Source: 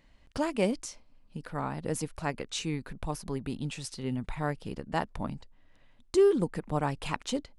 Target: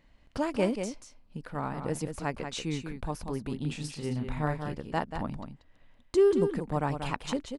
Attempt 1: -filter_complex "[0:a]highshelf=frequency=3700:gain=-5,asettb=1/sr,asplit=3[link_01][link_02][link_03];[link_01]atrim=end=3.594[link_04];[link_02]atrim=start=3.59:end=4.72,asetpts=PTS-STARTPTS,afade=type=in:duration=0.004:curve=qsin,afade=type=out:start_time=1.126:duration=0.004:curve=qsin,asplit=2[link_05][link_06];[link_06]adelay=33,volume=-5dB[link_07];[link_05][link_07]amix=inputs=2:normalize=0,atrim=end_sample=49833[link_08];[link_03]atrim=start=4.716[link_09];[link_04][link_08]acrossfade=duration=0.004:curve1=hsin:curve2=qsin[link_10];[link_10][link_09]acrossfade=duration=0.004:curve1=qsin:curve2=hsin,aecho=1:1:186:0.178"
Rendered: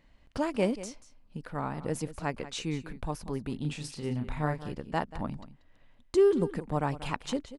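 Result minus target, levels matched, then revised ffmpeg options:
echo-to-direct −7.5 dB
-filter_complex "[0:a]highshelf=frequency=3700:gain=-5,asettb=1/sr,asplit=3[link_01][link_02][link_03];[link_01]atrim=end=3.594[link_04];[link_02]atrim=start=3.59:end=4.72,asetpts=PTS-STARTPTS,afade=type=in:duration=0.004:curve=qsin,afade=type=out:start_time=1.126:duration=0.004:curve=qsin,asplit=2[link_05][link_06];[link_06]adelay=33,volume=-5dB[link_07];[link_05][link_07]amix=inputs=2:normalize=0,atrim=end_sample=49833[link_08];[link_03]atrim=start=4.716[link_09];[link_04][link_08]acrossfade=duration=0.004:curve1=hsin:curve2=qsin[link_10];[link_10][link_09]acrossfade=duration=0.004:curve1=qsin:curve2=hsin,aecho=1:1:186:0.422"

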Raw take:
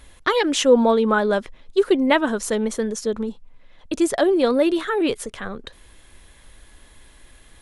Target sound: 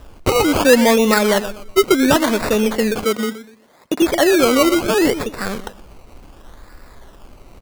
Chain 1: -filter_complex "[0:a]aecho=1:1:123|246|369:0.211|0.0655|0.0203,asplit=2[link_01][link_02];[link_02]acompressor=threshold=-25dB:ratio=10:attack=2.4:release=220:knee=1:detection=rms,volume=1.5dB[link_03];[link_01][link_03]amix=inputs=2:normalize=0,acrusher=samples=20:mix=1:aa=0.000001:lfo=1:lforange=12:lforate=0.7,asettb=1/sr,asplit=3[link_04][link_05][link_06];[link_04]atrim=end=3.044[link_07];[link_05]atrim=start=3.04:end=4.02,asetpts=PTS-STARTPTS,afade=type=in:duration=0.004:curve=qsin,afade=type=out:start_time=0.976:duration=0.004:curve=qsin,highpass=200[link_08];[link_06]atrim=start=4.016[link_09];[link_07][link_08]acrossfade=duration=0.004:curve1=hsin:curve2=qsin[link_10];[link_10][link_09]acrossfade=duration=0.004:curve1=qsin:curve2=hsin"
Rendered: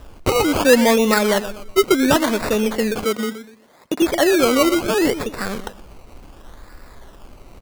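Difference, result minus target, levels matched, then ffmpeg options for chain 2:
downward compressor: peak gain reduction +6.5 dB
-filter_complex "[0:a]aecho=1:1:123|246|369:0.211|0.0655|0.0203,asplit=2[link_01][link_02];[link_02]acompressor=threshold=-18dB:ratio=10:attack=2.4:release=220:knee=1:detection=rms,volume=1.5dB[link_03];[link_01][link_03]amix=inputs=2:normalize=0,acrusher=samples=20:mix=1:aa=0.000001:lfo=1:lforange=12:lforate=0.7,asettb=1/sr,asplit=3[link_04][link_05][link_06];[link_04]atrim=end=3.044[link_07];[link_05]atrim=start=3.04:end=4.02,asetpts=PTS-STARTPTS,afade=type=in:duration=0.004:curve=qsin,afade=type=out:start_time=0.976:duration=0.004:curve=qsin,highpass=200[link_08];[link_06]atrim=start=4.016[link_09];[link_07][link_08]acrossfade=duration=0.004:curve1=hsin:curve2=qsin[link_10];[link_10][link_09]acrossfade=duration=0.004:curve1=qsin:curve2=hsin"

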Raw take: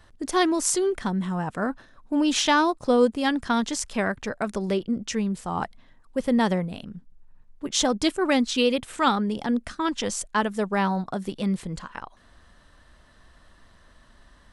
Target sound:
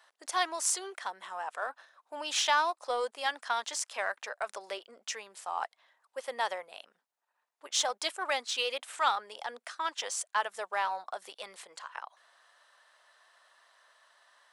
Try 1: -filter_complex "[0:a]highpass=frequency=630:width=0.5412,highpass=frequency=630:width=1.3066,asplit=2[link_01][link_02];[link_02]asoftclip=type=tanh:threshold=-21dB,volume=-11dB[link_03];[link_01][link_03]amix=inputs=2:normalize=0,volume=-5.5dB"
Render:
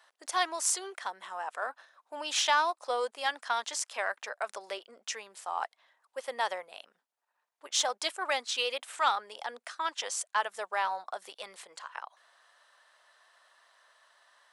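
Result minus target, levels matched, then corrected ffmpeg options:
soft clipping: distortion −6 dB
-filter_complex "[0:a]highpass=frequency=630:width=0.5412,highpass=frequency=630:width=1.3066,asplit=2[link_01][link_02];[link_02]asoftclip=type=tanh:threshold=-30dB,volume=-11dB[link_03];[link_01][link_03]amix=inputs=2:normalize=0,volume=-5.5dB"

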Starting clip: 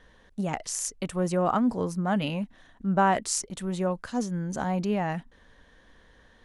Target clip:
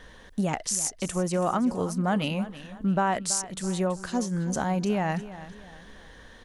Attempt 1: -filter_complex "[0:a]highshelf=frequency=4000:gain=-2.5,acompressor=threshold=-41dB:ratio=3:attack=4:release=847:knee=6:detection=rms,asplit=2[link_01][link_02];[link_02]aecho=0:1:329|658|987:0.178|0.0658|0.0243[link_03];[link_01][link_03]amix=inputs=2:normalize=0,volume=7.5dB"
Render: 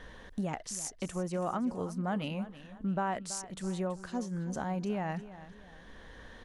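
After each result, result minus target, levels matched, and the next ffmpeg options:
downward compressor: peak gain reduction +7.5 dB; 8,000 Hz band −3.5 dB
-filter_complex "[0:a]highshelf=frequency=4000:gain=-2.5,acompressor=threshold=-29.5dB:ratio=3:attack=4:release=847:knee=6:detection=rms,asplit=2[link_01][link_02];[link_02]aecho=0:1:329|658|987:0.178|0.0658|0.0243[link_03];[link_01][link_03]amix=inputs=2:normalize=0,volume=7.5dB"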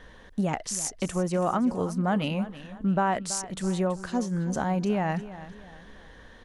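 8,000 Hz band −3.5 dB
-filter_complex "[0:a]highshelf=frequency=4000:gain=5,acompressor=threshold=-29.5dB:ratio=3:attack=4:release=847:knee=6:detection=rms,asplit=2[link_01][link_02];[link_02]aecho=0:1:329|658|987:0.178|0.0658|0.0243[link_03];[link_01][link_03]amix=inputs=2:normalize=0,volume=7.5dB"

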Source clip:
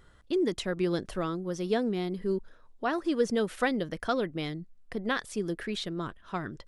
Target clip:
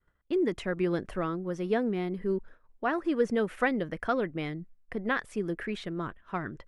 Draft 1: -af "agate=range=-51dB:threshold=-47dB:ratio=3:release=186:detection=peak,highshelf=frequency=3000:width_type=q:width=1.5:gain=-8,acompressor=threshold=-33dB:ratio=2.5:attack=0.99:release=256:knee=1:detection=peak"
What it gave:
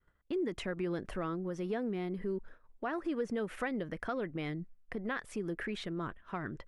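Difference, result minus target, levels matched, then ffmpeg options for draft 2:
downward compressor: peak gain reduction +10.5 dB
-af "agate=range=-51dB:threshold=-47dB:ratio=3:release=186:detection=peak,highshelf=frequency=3000:width_type=q:width=1.5:gain=-8"

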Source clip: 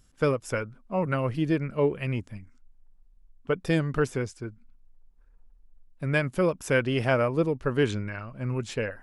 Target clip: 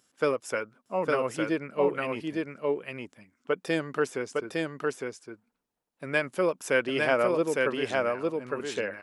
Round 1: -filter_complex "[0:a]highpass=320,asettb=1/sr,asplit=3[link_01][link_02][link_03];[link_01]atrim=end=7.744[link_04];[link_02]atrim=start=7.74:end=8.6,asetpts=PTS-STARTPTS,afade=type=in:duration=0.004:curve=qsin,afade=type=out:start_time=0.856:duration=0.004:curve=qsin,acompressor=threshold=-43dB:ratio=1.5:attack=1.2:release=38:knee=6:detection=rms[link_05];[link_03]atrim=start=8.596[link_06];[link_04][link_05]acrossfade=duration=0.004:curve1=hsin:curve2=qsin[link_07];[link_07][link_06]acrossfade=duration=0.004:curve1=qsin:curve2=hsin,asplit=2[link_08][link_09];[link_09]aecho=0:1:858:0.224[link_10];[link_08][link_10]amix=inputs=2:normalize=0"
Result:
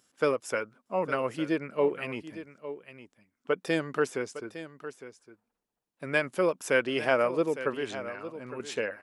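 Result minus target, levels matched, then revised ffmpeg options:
echo-to-direct −10.5 dB
-filter_complex "[0:a]highpass=320,asettb=1/sr,asplit=3[link_01][link_02][link_03];[link_01]atrim=end=7.744[link_04];[link_02]atrim=start=7.74:end=8.6,asetpts=PTS-STARTPTS,afade=type=in:duration=0.004:curve=qsin,afade=type=out:start_time=0.856:duration=0.004:curve=qsin,acompressor=threshold=-43dB:ratio=1.5:attack=1.2:release=38:knee=6:detection=rms[link_05];[link_03]atrim=start=8.596[link_06];[link_04][link_05]acrossfade=duration=0.004:curve1=hsin:curve2=qsin[link_07];[link_07][link_06]acrossfade=duration=0.004:curve1=qsin:curve2=hsin,asplit=2[link_08][link_09];[link_09]aecho=0:1:858:0.75[link_10];[link_08][link_10]amix=inputs=2:normalize=0"

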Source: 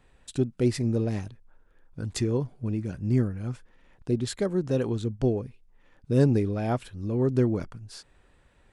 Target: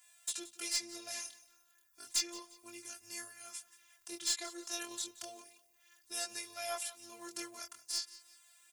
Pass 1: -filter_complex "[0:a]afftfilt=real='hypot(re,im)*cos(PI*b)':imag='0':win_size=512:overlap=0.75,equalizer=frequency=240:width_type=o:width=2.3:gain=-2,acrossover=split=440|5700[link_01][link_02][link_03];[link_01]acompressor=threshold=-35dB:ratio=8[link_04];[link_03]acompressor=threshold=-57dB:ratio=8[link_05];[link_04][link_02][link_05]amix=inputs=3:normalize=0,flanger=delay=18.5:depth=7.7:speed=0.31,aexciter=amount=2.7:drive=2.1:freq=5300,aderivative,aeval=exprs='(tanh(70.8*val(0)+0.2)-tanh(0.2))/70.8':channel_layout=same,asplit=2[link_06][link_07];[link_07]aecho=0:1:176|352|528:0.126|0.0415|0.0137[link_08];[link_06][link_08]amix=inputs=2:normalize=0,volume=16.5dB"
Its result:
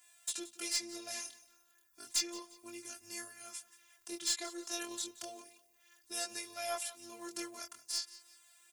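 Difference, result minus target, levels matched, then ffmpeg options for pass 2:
250 Hz band +3.5 dB
-filter_complex "[0:a]afftfilt=real='hypot(re,im)*cos(PI*b)':imag='0':win_size=512:overlap=0.75,equalizer=frequency=240:width_type=o:width=2.3:gain=-8.5,acrossover=split=440|5700[link_01][link_02][link_03];[link_01]acompressor=threshold=-35dB:ratio=8[link_04];[link_03]acompressor=threshold=-57dB:ratio=8[link_05];[link_04][link_02][link_05]amix=inputs=3:normalize=0,flanger=delay=18.5:depth=7.7:speed=0.31,aexciter=amount=2.7:drive=2.1:freq=5300,aderivative,aeval=exprs='(tanh(70.8*val(0)+0.2)-tanh(0.2))/70.8':channel_layout=same,asplit=2[link_06][link_07];[link_07]aecho=0:1:176|352|528:0.126|0.0415|0.0137[link_08];[link_06][link_08]amix=inputs=2:normalize=0,volume=16.5dB"

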